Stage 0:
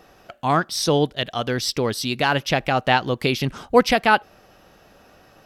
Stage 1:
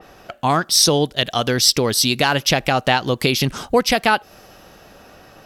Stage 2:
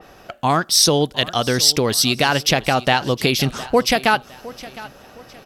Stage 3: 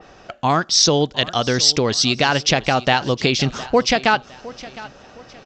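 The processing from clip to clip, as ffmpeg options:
-af "acompressor=threshold=0.0794:ratio=2.5,adynamicequalizer=threshold=0.00794:dfrequency=3900:dqfactor=0.7:tfrequency=3900:tqfactor=0.7:attack=5:release=100:ratio=0.375:range=4:mode=boostabove:tftype=highshelf,volume=2.11"
-af "aecho=1:1:711|1422|2133:0.119|0.0428|0.0154"
-af "aresample=16000,aresample=44100"

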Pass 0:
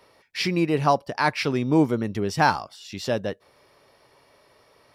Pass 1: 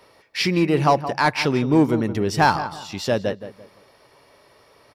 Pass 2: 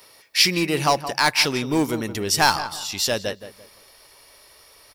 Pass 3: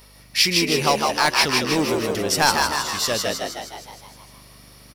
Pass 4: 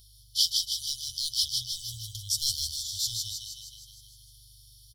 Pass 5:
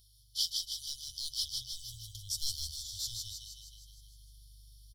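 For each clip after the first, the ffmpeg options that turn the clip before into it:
-filter_complex "[0:a]asplit=2[s0][s1];[s1]asoftclip=type=hard:threshold=0.126,volume=0.562[s2];[s0][s2]amix=inputs=2:normalize=0,asplit=2[s3][s4];[s4]adelay=170,lowpass=f=2000:p=1,volume=0.266,asplit=2[s5][s6];[s6]adelay=170,lowpass=f=2000:p=1,volume=0.32,asplit=2[s7][s8];[s8]adelay=170,lowpass=f=2000:p=1,volume=0.32[s9];[s3][s5][s7][s9]amix=inputs=4:normalize=0"
-af "asubboost=boost=7.5:cutoff=53,crystalizer=i=6.5:c=0,volume=0.596"
-filter_complex "[0:a]aeval=exprs='val(0)+0.00316*(sin(2*PI*50*n/s)+sin(2*PI*2*50*n/s)/2+sin(2*PI*3*50*n/s)/3+sin(2*PI*4*50*n/s)/4+sin(2*PI*5*50*n/s)/5)':c=same,asplit=2[s0][s1];[s1]asplit=8[s2][s3][s4][s5][s6][s7][s8][s9];[s2]adelay=156,afreqshift=73,volume=0.668[s10];[s3]adelay=312,afreqshift=146,volume=0.394[s11];[s4]adelay=468,afreqshift=219,volume=0.232[s12];[s5]adelay=624,afreqshift=292,volume=0.138[s13];[s6]adelay=780,afreqshift=365,volume=0.0813[s14];[s7]adelay=936,afreqshift=438,volume=0.0479[s15];[s8]adelay=1092,afreqshift=511,volume=0.0282[s16];[s9]adelay=1248,afreqshift=584,volume=0.0166[s17];[s10][s11][s12][s13][s14][s15][s16][s17]amix=inputs=8:normalize=0[s18];[s0][s18]amix=inputs=2:normalize=0,volume=0.891"
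-af "afftfilt=real='re*(1-between(b*sr/4096,120,3000))':imag='im*(1-between(b*sr/4096,120,3000))':win_size=4096:overlap=0.75,volume=0.531"
-af "asubboost=boost=6.5:cutoff=67,aeval=exprs='0.335*(cos(1*acos(clip(val(0)/0.335,-1,1)))-cos(1*PI/2))+0.00299*(cos(6*acos(clip(val(0)/0.335,-1,1)))-cos(6*PI/2))+0.00473*(cos(8*acos(clip(val(0)/0.335,-1,1)))-cos(8*PI/2))':c=same,volume=0.398"

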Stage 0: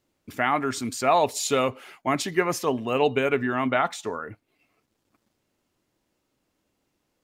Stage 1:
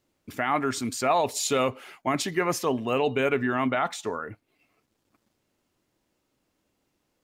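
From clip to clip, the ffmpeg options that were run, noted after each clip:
-af "alimiter=limit=0.2:level=0:latency=1:release=16"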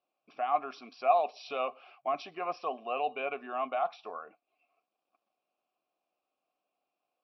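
-filter_complex "[0:a]asplit=3[s0][s1][s2];[s0]bandpass=f=730:t=q:w=8,volume=1[s3];[s1]bandpass=f=1090:t=q:w=8,volume=0.501[s4];[s2]bandpass=f=2440:t=q:w=8,volume=0.355[s5];[s3][s4][s5]amix=inputs=3:normalize=0,afftfilt=real='re*between(b*sr/4096,130,5800)':imag='im*between(b*sr/4096,130,5800)':win_size=4096:overlap=0.75,aemphasis=mode=production:type=50fm,volume=1.33"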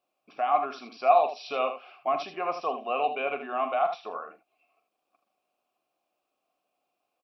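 -af "aecho=1:1:42|78:0.237|0.335,volume=1.68"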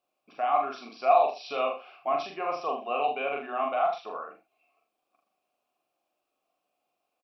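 -filter_complex "[0:a]asplit=2[s0][s1];[s1]adelay=42,volume=0.501[s2];[s0][s2]amix=inputs=2:normalize=0,volume=0.794"

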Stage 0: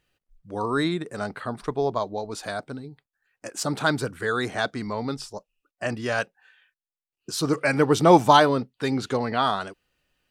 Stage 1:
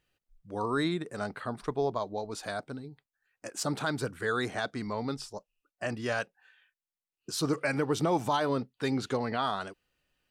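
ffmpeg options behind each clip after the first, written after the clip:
-af "alimiter=limit=0.2:level=0:latency=1:release=156,volume=0.596"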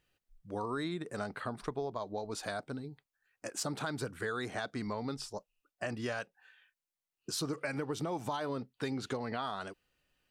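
-af "acompressor=threshold=0.0224:ratio=6"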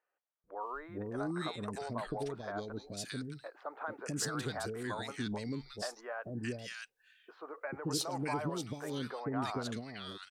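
-filter_complex "[0:a]acrossover=split=490|1700[s0][s1][s2];[s0]adelay=440[s3];[s2]adelay=620[s4];[s3][s1][s4]amix=inputs=3:normalize=0,volume=1.12"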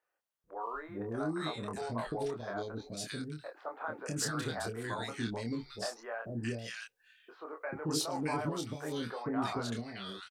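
-filter_complex "[0:a]asplit=2[s0][s1];[s1]adelay=26,volume=0.631[s2];[s0][s2]amix=inputs=2:normalize=0"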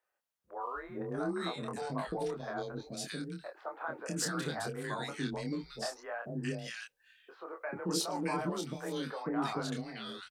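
-af "afreqshift=24"

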